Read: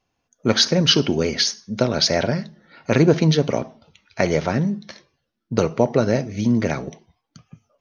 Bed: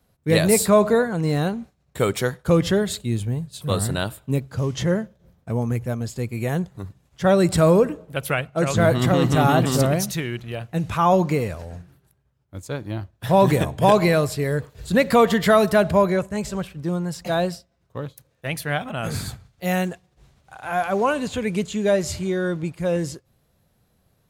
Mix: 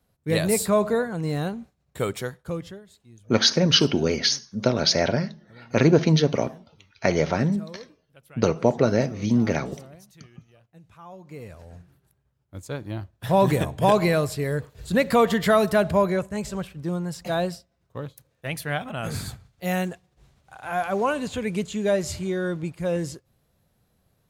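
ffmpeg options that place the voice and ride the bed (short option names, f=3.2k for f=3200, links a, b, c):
-filter_complex "[0:a]adelay=2850,volume=-2dB[a];[1:a]volume=18.5dB,afade=t=out:st=1.99:d=0.82:silence=0.0841395,afade=t=in:st=11.24:d=0.94:silence=0.0668344[b];[a][b]amix=inputs=2:normalize=0"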